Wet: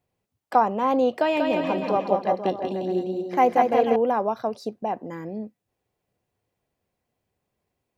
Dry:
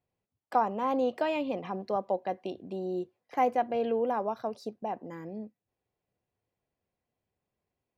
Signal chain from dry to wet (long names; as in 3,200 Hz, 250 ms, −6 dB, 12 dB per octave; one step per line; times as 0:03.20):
0:01.14–0:03.96: bouncing-ball delay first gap 190 ms, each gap 0.85×, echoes 5
level +7 dB